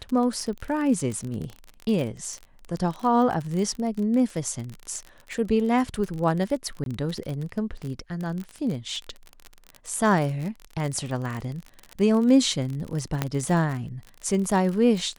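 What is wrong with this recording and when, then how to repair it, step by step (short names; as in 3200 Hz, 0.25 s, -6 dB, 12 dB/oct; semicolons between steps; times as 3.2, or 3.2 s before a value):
crackle 39/s -29 dBFS
6.84–6.86 gap 22 ms
13.22 pop -9 dBFS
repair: de-click; interpolate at 6.84, 22 ms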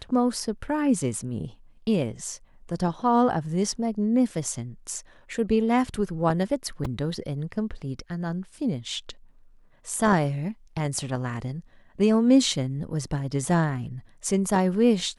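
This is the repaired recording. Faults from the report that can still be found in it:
none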